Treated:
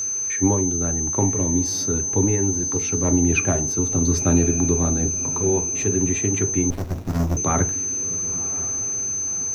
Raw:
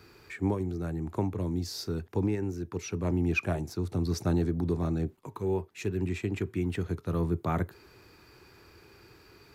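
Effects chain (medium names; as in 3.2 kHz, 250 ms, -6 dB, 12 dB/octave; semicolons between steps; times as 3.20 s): treble shelf 6.6 kHz -6.5 dB; echo that smears into a reverb 1070 ms, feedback 47%, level -15.5 dB; whistle 6.2 kHz -31 dBFS; reverberation RT60 0.30 s, pre-delay 4 ms, DRR 7 dB; 6.70–7.37 s: sliding maximum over 65 samples; trim +7.5 dB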